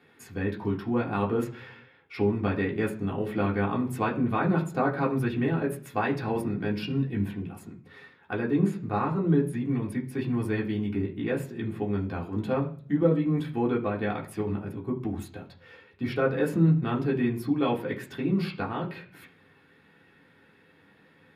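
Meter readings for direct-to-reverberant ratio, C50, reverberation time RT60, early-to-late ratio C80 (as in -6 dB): -4.0 dB, 12.5 dB, 0.50 s, 17.0 dB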